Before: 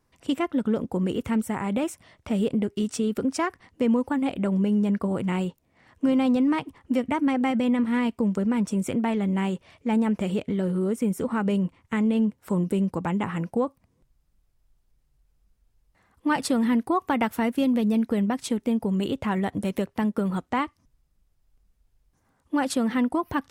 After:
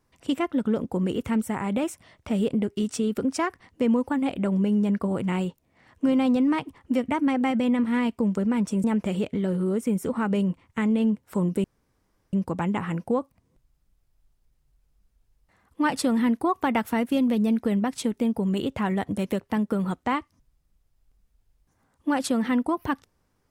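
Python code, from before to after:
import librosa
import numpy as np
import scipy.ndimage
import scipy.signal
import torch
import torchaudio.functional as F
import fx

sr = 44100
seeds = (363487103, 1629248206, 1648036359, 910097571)

y = fx.edit(x, sr, fx.cut(start_s=8.84, length_s=1.15),
    fx.insert_room_tone(at_s=12.79, length_s=0.69), tone=tone)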